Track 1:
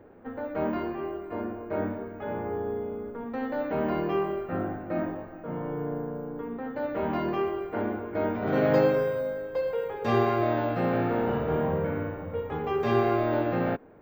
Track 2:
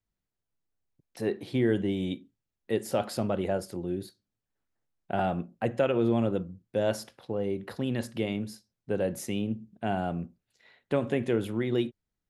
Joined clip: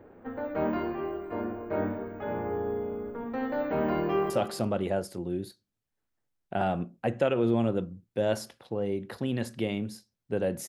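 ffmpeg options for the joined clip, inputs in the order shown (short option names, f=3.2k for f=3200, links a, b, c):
-filter_complex "[0:a]apad=whole_dur=10.68,atrim=end=10.68,atrim=end=4.302[a];[1:a]atrim=start=2.878:end=9.26[b];[a][b]acrossfade=d=0.004:c1=hsin:c2=hsin,asplit=2[c][d];[d]afade=t=in:st=4.01:d=0.01,afade=t=out:st=4.3:d=0.01,aecho=0:1:170|340|510|680:0.334965|0.133986|0.0535945|0.0214378[e];[c][e]amix=inputs=2:normalize=0"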